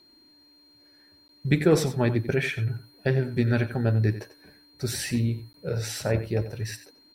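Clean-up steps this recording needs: notch 4200 Hz, Q 30; interpolate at 1.28/5.53, 12 ms; inverse comb 91 ms -13 dB

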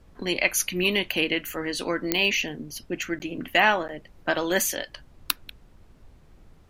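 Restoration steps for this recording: de-click; interpolate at 3.19/3.88, 9.6 ms; noise print and reduce 19 dB

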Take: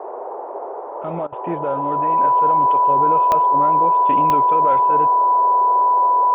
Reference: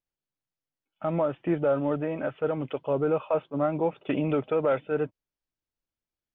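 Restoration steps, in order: de-click; notch 990 Hz, Q 30; interpolate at 1.27, 52 ms; noise print and reduce 30 dB

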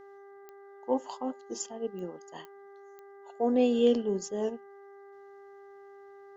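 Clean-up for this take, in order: de-click; de-hum 397.9 Hz, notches 5

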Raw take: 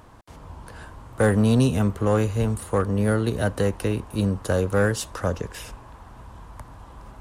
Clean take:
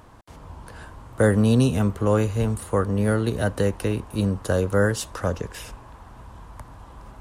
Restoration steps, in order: clip repair -12.5 dBFS

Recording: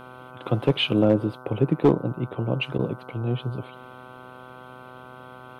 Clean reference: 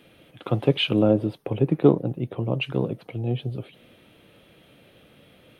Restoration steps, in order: clip repair -9.5 dBFS; de-hum 126.8 Hz, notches 12; interpolate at 2.78, 10 ms

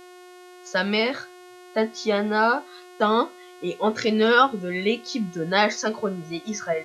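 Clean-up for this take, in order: de-hum 360.8 Hz, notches 35

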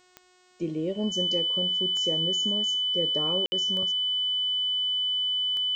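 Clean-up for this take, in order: de-click; de-hum 364.5 Hz, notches 23; notch 3000 Hz, Q 30; room tone fill 3.46–3.52

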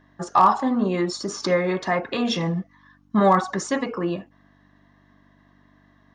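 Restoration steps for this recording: clip repair -7 dBFS; de-hum 48.8 Hz, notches 6

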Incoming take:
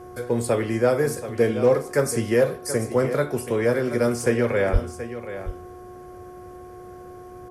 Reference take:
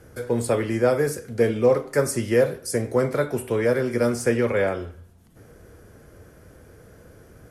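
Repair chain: clip repair -9.5 dBFS; de-hum 362.5 Hz, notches 3; de-plosive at 4.72; inverse comb 0.729 s -12 dB

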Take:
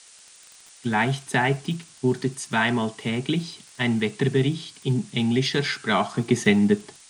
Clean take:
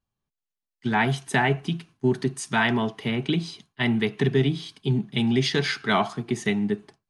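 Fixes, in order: de-click; denoiser 30 dB, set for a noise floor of -50 dBFS; gain correction -6 dB, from 6.14

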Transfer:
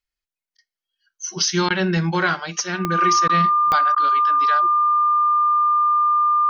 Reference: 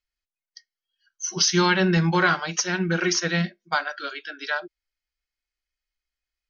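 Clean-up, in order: de-click; notch 1200 Hz, Q 30; interpolate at 0.57/1.69/3.28/3.95, 12 ms

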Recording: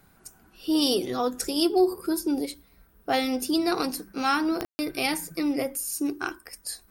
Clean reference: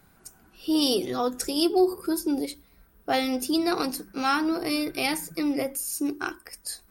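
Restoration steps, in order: de-click; room tone fill 4.65–4.79

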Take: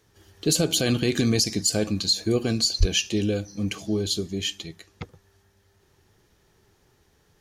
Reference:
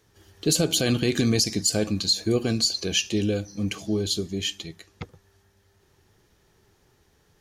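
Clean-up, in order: 2.79–2.91 HPF 140 Hz 24 dB/oct

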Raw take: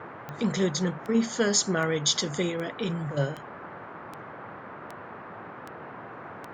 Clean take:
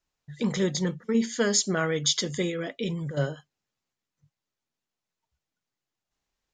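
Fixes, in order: de-click; noise print and reduce 30 dB

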